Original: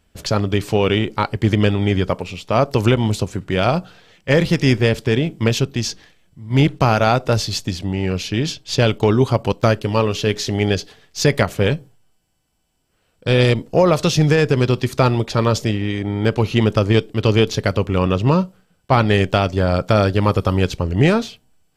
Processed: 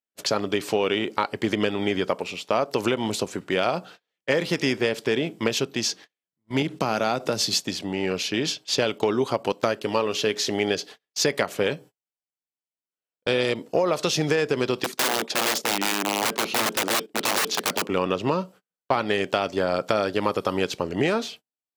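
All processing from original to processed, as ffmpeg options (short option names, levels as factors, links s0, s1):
-filter_complex "[0:a]asettb=1/sr,asplit=3[s0][s1][s2];[s0]atrim=end=6.624[s3];[s1]atrim=start=6.62:end=7.6,asetpts=PTS-STARTPTS,afade=t=in:d=0.004:c=qsin,afade=t=out:st=0.976:d=0.004:c=qsin,bass=f=250:g=11,treble=f=4000:g=4,acompressor=threshold=0.282:ratio=3:attack=3.2:release=140:knee=1:detection=peak,highpass=160[s4];[s2]atrim=start=7.596[s5];[s3][s4]acrossfade=d=0.004:c1=hsin:c2=qsin[s6];[s6][s5]acrossfade=d=0.004:c1=qsin:c2=hsin,asettb=1/sr,asplit=3[s7][s8][s9];[s7]atrim=end=14.844[s10];[s8]atrim=start=14.84:end=17.9,asetpts=PTS-STARTPTS,afade=t=in:d=0.004:c=qsin,afade=t=out:st=3.056:d=0.004:c=qsin,agate=range=0.2:threshold=0.0282:ratio=16:release=100:detection=peak,lowshelf=f=130:t=q:w=1.5:g=-11.5,aeval=exprs='(mod(5.62*val(0)+1,2)-1)/5.62':c=same[s11];[s9]atrim=start=17.896[s12];[s10][s11]acrossfade=d=0.004:c1=hsin:c2=qsin[s13];[s13][s12]acrossfade=d=0.004:c1=qsin:c2=hsin,highpass=290,agate=range=0.0224:threshold=0.01:ratio=16:detection=peak,acompressor=threshold=0.112:ratio=4"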